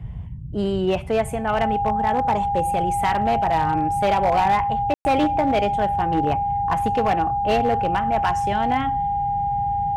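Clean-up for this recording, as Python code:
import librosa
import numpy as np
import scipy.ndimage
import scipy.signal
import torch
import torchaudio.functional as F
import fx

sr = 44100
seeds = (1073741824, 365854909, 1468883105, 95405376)

y = fx.fix_declip(x, sr, threshold_db=-13.5)
y = fx.notch(y, sr, hz=810.0, q=30.0)
y = fx.fix_ambience(y, sr, seeds[0], print_start_s=0.0, print_end_s=0.5, start_s=4.94, end_s=5.05)
y = fx.noise_reduce(y, sr, print_start_s=0.0, print_end_s=0.5, reduce_db=30.0)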